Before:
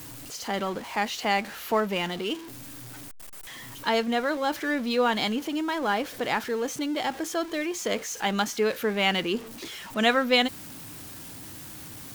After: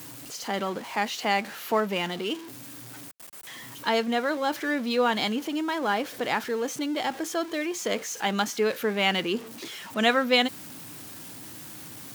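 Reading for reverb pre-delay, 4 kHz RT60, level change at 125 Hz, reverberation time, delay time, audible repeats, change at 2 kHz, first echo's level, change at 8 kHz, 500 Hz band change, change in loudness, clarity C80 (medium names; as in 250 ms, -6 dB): no reverb, no reverb, -1.0 dB, no reverb, no echo, no echo, 0.0 dB, no echo, 0.0 dB, 0.0 dB, 0.0 dB, no reverb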